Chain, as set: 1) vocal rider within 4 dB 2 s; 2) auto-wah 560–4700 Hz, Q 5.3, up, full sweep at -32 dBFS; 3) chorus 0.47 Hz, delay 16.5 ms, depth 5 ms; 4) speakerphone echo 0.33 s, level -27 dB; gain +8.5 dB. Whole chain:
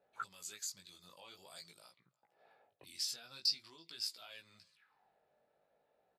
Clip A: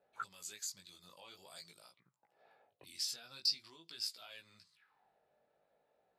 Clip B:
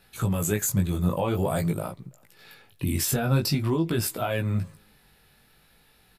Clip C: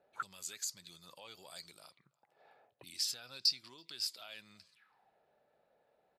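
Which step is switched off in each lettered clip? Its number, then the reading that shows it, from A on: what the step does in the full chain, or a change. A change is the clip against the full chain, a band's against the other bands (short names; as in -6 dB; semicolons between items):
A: 4, echo-to-direct -36.5 dB to none; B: 2, 250 Hz band +22.0 dB; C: 3, loudness change +2.0 LU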